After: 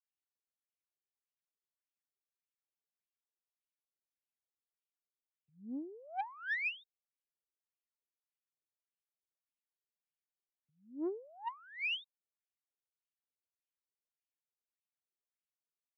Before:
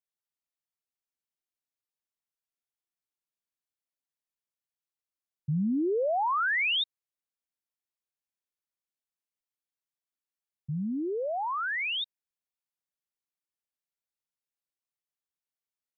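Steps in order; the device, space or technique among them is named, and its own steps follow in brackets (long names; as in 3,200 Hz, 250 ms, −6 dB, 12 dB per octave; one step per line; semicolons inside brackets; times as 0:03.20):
wah-wah guitar rig (LFO wah 1.7 Hz 350–2,900 Hz, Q 6.2; tube saturation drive 32 dB, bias 0.3; loudspeaker in its box 110–3,500 Hz, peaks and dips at 150 Hz −8 dB, 440 Hz +4 dB, 1,200 Hz −3 dB)
level +1.5 dB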